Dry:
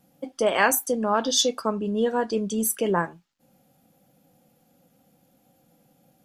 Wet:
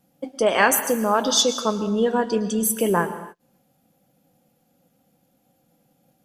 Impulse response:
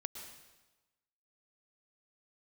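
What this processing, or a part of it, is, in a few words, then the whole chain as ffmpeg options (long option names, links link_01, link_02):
keyed gated reverb: -filter_complex "[0:a]asplit=3[link_01][link_02][link_03];[1:a]atrim=start_sample=2205[link_04];[link_02][link_04]afir=irnorm=-1:irlink=0[link_05];[link_03]apad=whole_len=275248[link_06];[link_05][link_06]sidechaingate=range=-38dB:threshold=-57dB:ratio=16:detection=peak,volume=1.5dB[link_07];[link_01][link_07]amix=inputs=2:normalize=0,volume=-2.5dB"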